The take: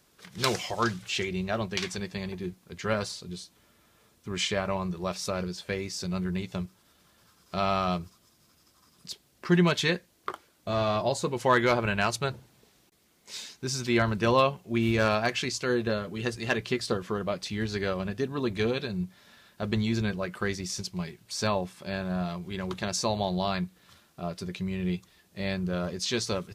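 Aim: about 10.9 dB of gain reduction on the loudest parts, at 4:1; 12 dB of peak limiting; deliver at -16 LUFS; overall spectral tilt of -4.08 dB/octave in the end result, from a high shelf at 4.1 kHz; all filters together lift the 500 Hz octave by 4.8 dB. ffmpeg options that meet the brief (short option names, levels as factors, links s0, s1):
-af "equalizer=f=500:t=o:g=6,highshelf=f=4100:g=6.5,acompressor=threshold=0.0398:ratio=4,volume=8.91,alimiter=limit=0.631:level=0:latency=1"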